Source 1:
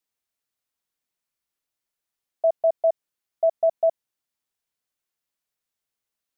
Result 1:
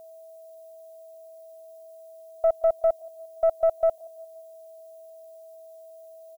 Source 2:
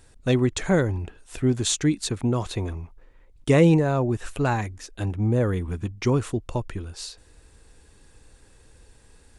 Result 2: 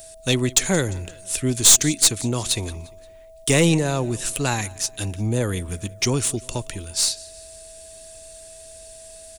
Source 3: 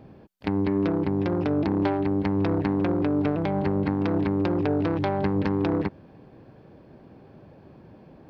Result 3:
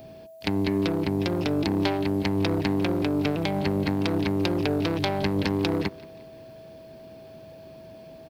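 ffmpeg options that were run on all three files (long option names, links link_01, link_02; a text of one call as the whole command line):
ffmpeg -i in.wav -filter_complex "[0:a]aecho=1:1:175|350|525:0.075|0.0367|0.018,acrossover=split=390|1800[link_01][link_02][link_03];[link_03]crystalizer=i=9:c=0[link_04];[link_01][link_02][link_04]amix=inputs=3:normalize=0,aeval=exprs='val(0)+0.00708*sin(2*PI*650*n/s)':channel_layout=same,aeval=exprs='(tanh(2.24*val(0)+0.35)-tanh(0.35))/2.24':channel_layout=same" out.wav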